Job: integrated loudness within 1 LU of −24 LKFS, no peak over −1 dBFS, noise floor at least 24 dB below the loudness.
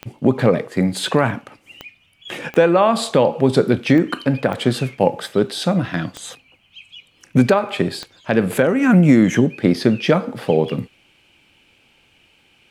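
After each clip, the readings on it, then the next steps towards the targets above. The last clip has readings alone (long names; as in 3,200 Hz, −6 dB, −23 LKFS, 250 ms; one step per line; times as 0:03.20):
number of clicks 7; integrated loudness −17.5 LKFS; sample peak −2.0 dBFS; target loudness −24.0 LKFS
→ click removal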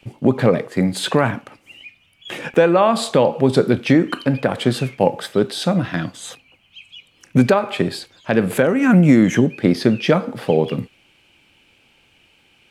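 number of clicks 0; integrated loudness −17.5 LKFS; sample peak −2.0 dBFS; target loudness −24.0 LKFS
→ level −6.5 dB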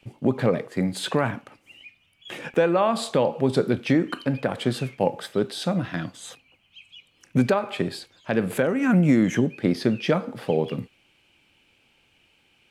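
integrated loudness −24.0 LKFS; sample peak −8.5 dBFS; background noise floor −64 dBFS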